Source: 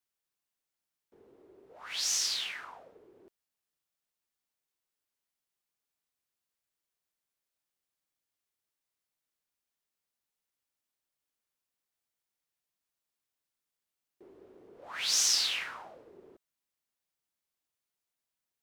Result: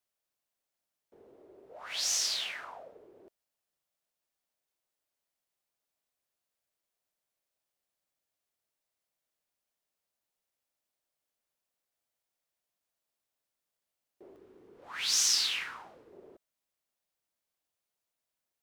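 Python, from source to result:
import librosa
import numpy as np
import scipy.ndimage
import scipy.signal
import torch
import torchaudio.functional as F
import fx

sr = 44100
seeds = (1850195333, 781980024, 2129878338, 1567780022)

y = fx.peak_eq(x, sr, hz=620.0, db=fx.steps((0.0, 7.5), (14.36, -6.5), (16.12, 6.0)), octaves=0.66)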